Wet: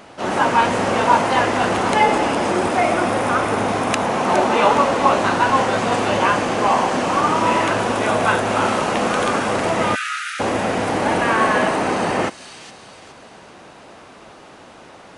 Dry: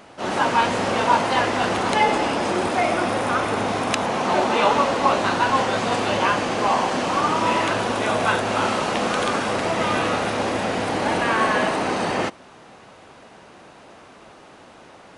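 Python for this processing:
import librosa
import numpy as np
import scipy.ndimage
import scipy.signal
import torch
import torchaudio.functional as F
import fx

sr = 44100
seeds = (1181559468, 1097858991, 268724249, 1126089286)

p1 = x + fx.echo_wet_highpass(x, sr, ms=414, feedback_pct=40, hz=3800.0, wet_db=-7.0, dry=0)
p2 = fx.dynamic_eq(p1, sr, hz=4100.0, q=1.2, threshold_db=-41.0, ratio=4.0, max_db=-5)
p3 = fx.brickwall_highpass(p2, sr, low_hz=1200.0, at=(9.94, 10.39), fade=0.02)
y = p3 * librosa.db_to_amplitude(3.5)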